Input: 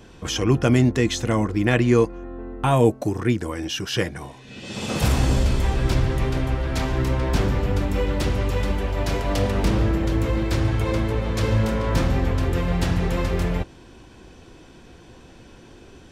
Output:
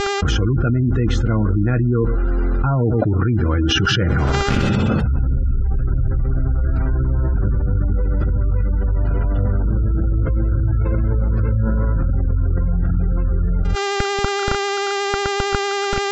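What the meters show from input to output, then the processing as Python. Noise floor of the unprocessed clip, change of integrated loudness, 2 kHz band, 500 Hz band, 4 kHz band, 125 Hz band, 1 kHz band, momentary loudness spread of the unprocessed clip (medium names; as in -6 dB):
-47 dBFS, +3.0 dB, +4.5 dB, +0.5 dB, +5.5 dB, +5.0 dB, +4.5 dB, 8 LU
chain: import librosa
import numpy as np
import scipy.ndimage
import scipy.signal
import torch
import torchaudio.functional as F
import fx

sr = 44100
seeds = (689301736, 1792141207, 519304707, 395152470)

y = fx.quant_dither(x, sr, seeds[0], bits=6, dither='none')
y = fx.peak_eq(y, sr, hz=1400.0, db=13.0, octaves=0.26)
y = fx.dmg_buzz(y, sr, base_hz=400.0, harmonics=19, level_db=-44.0, tilt_db=-2, odd_only=False)
y = y + 10.0 ** (-17.5 / 20.0) * np.pad(y, (int(114 * sr / 1000.0), 0))[:len(y)]
y = fx.vibrato(y, sr, rate_hz=11.0, depth_cents=20.0)
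y = fx.spec_gate(y, sr, threshold_db=-20, keep='strong')
y = fx.riaa(y, sr, side='playback')
y = fx.env_flatten(y, sr, amount_pct=100)
y = y * 10.0 ** (-16.0 / 20.0)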